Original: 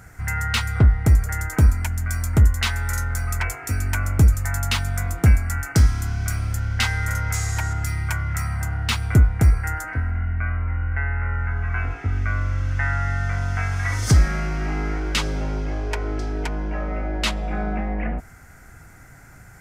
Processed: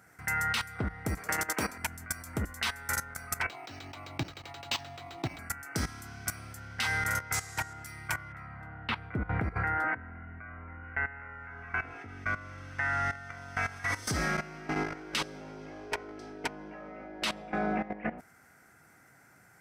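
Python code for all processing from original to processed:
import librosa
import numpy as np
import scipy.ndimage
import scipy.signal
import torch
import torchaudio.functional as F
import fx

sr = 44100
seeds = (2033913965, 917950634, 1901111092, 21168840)

y = fx.chain(x, sr, fx.peak_eq(hz=12000.0, db=-9.5, octaves=1.6),
    fx.spectral_comp(ratio=2.0), at=(1.17, 1.78))
y = fx.chain(y, sr, fx.low_shelf(hz=430.0, db=-5.5),
    fx.fixed_phaser(hz=310.0, stages=8),
    fx.resample_linear(factor=4), at=(3.49, 5.39))
y = fx.chain(y, sr, fx.air_absorb(metres=460.0),
    fx.sustainer(db_per_s=37.0), at=(8.32, 10.84))
y = scipy.signal.sosfilt(scipy.signal.butter(2, 200.0, 'highpass', fs=sr, output='sos'), y)
y = fx.notch(y, sr, hz=6900.0, q=9.6)
y = fx.level_steps(y, sr, step_db=15)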